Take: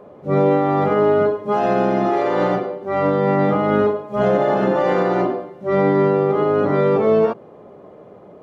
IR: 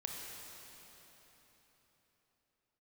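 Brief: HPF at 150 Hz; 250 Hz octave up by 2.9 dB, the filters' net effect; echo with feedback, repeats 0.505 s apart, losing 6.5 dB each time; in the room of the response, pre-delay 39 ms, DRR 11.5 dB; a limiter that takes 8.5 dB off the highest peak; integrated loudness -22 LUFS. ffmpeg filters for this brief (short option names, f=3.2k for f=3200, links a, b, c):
-filter_complex "[0:a]highpass=150,equalizer=f=250:t=o:g=5,alimiter=limit=-12.5dB:level=0:latency=1,aecho=1:1:505|1010|1515|2020|2525|3030:0.473|0.222|0.105|0.0491|0.0231|0.0109,asplit=2[a][b];[1:a]atrim=start_sample=2205,adelay=39[c];[b][c]afir=irnorm=-1:irlink=0,volume=-11.5dB[d];[a][d]amix=inputs=2:normalize=0,volume=-2dB"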